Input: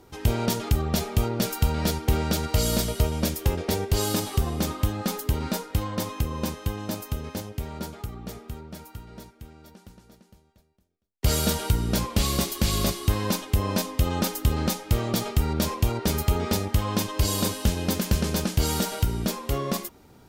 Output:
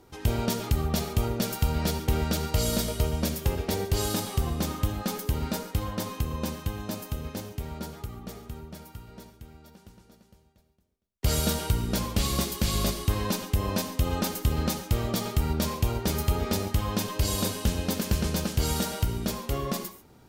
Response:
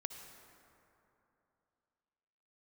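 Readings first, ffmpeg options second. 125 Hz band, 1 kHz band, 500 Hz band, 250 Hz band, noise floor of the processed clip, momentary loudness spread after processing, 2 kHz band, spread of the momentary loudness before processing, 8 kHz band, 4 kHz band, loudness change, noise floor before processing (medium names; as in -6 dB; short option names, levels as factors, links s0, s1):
-2.5 dB, -2.5 dB, -2.5 dB, -2.5 dB, -59 dBFS, 10 LU, -2.5 dB, 10 LU, -2.5 dB, -2.5 dB, -2.5 dB, -58 dBFS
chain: -filter_complex "[1:a]atrim=start_sample=2205,atrim=end_sample=6615[s0];[0:a][s0]afir=irnorm=-1:irlink=0"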